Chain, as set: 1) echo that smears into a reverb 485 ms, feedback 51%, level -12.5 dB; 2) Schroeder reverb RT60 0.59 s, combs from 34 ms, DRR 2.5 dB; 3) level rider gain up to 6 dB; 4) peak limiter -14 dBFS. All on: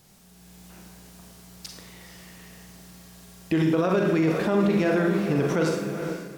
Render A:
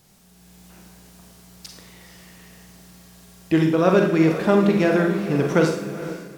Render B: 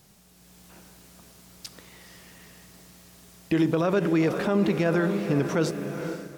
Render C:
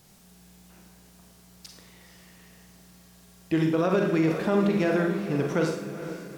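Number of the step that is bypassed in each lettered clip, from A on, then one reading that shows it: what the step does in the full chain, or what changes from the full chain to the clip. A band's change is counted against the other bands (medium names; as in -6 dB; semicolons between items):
4, crest factor change +7.5 dB; 2, loudness change -1.5 LU; 3, crest factor change +2.0 dB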